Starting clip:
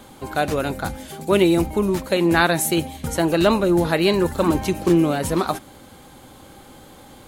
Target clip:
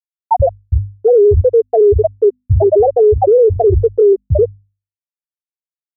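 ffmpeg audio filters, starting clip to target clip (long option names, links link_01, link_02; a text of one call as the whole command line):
ffmpeg -i in.wav -filter_complex "[0:a]equalizer=frequency=160:width_type=o:width=0.67:gain=-6,equalizer=frequency=400:width_type=o:width=0.67:gain=7,equalizer=frequency=1600:width_type=o:width=0.67:gain=-9,asplit=2[link_01][link_02];[link_02]adelay=134.1,volume=-29dB,highshelf=frequency=4000:gain=-3.02[link_03];[link_01][link_03]amix=inputs=2:normalize=0,asplit=2[link_04][link_05];[link_05]acontrast=31,volume=-1.5dB[link_06];[link_04][link_06]amix=inputs=2:normalize=0,lowpass=frequency=2900:width=0.5412,lowpass=frequency=2900:width=1.3066,lowshelf=frequency=110:width_type=q:width=1.5:gain=10,asetrate=53802,aresample=44100,afftfilt=real='re*gte(hypot(re,im),2.82)':imag='im*gte(hypot(re,im),2.82)':win_size=1024:overlap=0.75,acompressor=threshold=-10dB:ratio=6,bandreject=frequency=50:width_type=h:width=6,bandreject=frequency=100:width_type=h:width=6,bandreject=frequency=150:width_type=h:width=6,bandreject=frequency=200:width_type=h:width=6,bandreject=frequency=250:width_type=h:width=6,alimiter=level_in=15dB:limit=-1dB:release=50:level=0:latency=1,volume=-3.5dB" out.wav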